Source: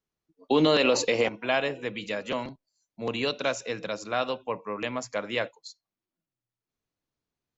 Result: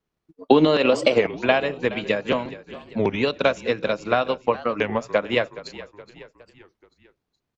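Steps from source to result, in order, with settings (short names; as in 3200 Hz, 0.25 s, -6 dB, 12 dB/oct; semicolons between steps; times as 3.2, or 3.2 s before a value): high shelf 4500 Hz -11.5 dB; in parallel at +1 dB: compressor, threshold -32 dBFS, peak gain reduction 13.5 dB; on the sum: transient shaper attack +7 dB, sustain -5 dB; vibrato 0.8 Hz 6 cents; on a send: frequency-shifting echo 0.42 s, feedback 49%, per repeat -37 Hz, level -16.5 dB; on the sum: record warp 33 1/3 rpm, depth 250 cents; gain +1.5 dB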